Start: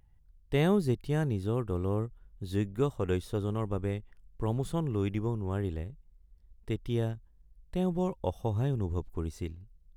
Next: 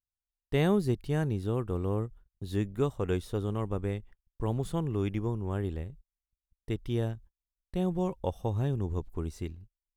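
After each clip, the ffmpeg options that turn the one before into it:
-af "agate=range=0.0141:threshold=0.00398:ratio=16:detection=peak"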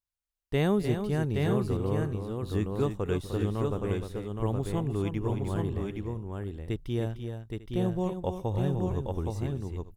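-af "aecho=1:1:251|303|819|897:0.119|0.398|0.631|0.112"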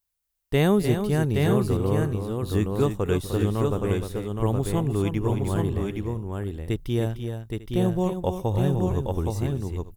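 -af "highshelf=f=9200:g=10,volume=1.88"

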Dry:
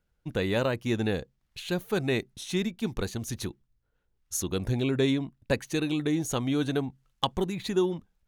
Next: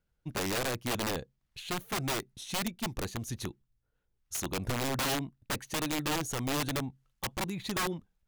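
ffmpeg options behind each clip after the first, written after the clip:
-af "aeval=exprs='(mod(12.6*val(0)+1,2)-1)/12.6':c=same,equalizer=f=130:t=o:w=0.77:g=2,volume=0.631"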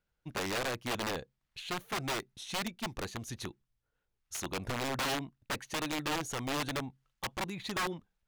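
-filter_complex "[0:a]asplit=2[s0][s1];[s1]highpass=f=720:p=1,volume=1.58,asoftclip=type=tanh:threshold=0.0596[s2];[s0][s2]amix=inputs=2:normalize=0,lowpass=f=4600:p=1,volume=0.501"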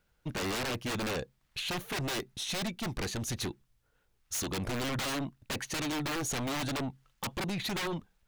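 -af "aeval=exprs='0.0501*sin(PI/2*3.16*val(0)/0.0501)':c=same,volume=0.631"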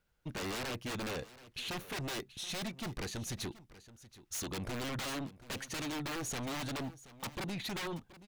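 -af "aecho=1:1:727:0.133,volume=0.562"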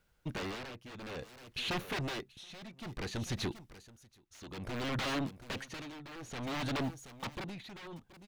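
-filter_complex "[0:a]acrossover=split=5000[s0][s1];[s1]acompressor=threshold=0.00158:ratio=4:attack=1:release=60[s2];[s0][s2]amix=inputs=2:normalize=0,tremolo=f=0.58:d=0.82,volume=1.78"

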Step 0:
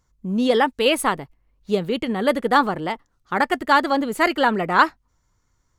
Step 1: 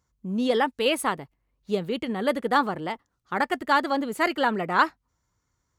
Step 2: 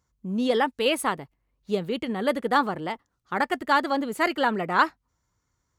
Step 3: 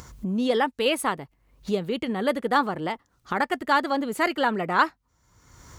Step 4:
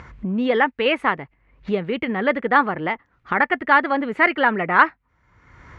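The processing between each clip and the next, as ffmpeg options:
-af "highpass=57,volume=0.562"
-af anull
-af "acompressor=mode=upward:threshold=0.0708:ratio=2.5"
-af "lowpass=f=2100:t=q:w=2.4,volume=1.41"

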